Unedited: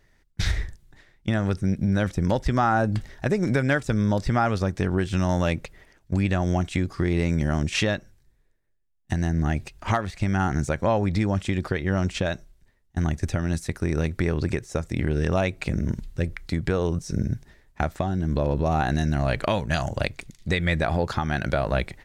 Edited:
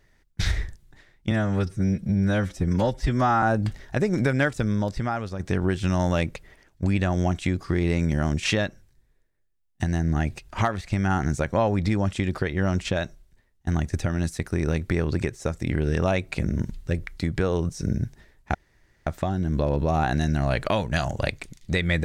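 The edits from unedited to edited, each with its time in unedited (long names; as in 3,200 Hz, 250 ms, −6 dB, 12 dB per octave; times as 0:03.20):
0:01.31–0:02.72: time-stretch 1.5×
0:03.74–0:04.69: fade out linear, to −9.5 dB
0:17.84: splice in room tone 0.52 s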